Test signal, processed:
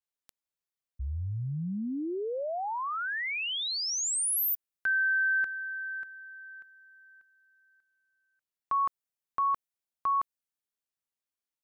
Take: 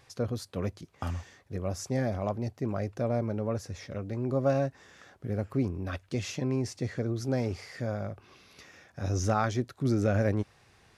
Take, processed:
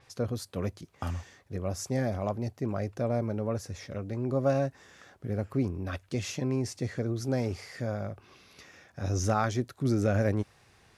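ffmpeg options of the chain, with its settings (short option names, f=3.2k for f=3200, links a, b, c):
-af "adynamicequalizer=threshold=0.00282:dfrequency=7100:dqfactor=0.7:tfrequency=7100:tqfactor=0.7:attack=5:release=100:ratio=0.375:range=2.5:mode=boostabove:tftype=highshelf"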